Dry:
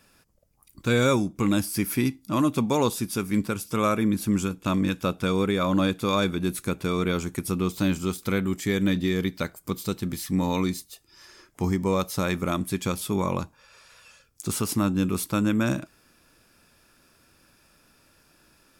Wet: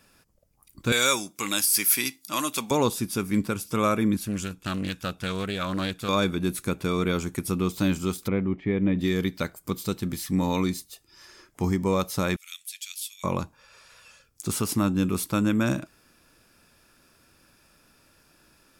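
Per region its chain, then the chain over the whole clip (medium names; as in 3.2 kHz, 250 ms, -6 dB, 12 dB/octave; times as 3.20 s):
0.92–2.71 s: high-pass 930 Hz 6 dB/octave + treble shelf 2.3 kHz +12 dB
4.17–6.09 s: peaking EQ 380 Hz -8.5 dB 2.8 oct + loudspeaker Doppler distortion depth 0.28 ms
8.28–8.99 s: low-pass 2.3 kHz 24 dB/octave + peaking EQ 1.5 kHz -10.5 dB 0.6 oct
12.36–13.24 s: inverse Chebyshev high-pass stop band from 790 Hz, stop band 60 dB + tape noise reduction on one side only decoder only
whole clip: none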